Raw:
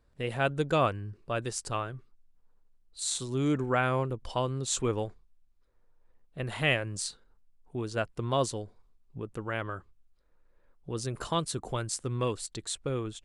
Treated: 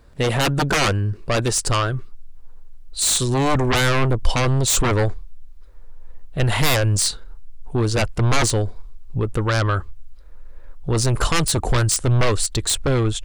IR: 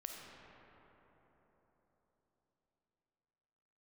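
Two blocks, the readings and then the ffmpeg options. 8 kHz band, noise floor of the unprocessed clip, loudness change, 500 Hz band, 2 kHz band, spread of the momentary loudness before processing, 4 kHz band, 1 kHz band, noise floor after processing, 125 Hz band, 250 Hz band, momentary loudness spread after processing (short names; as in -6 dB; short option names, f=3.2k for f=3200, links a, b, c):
+14.5 dB, -66 dBFS, +12.0 dB, +8.5 dB, +11.0 dB, 13 LU, +14.0 dB, +9.5 dB, -38 dBFS, +15.0 dB, +10.0 dB, 8 LU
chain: -af "aeval=exprs='0.251*sin(PI/2*6.31*val(0)/0.251)':c=same,asubboost=boost=3.5:cutoff=94,volume=-2.5dB"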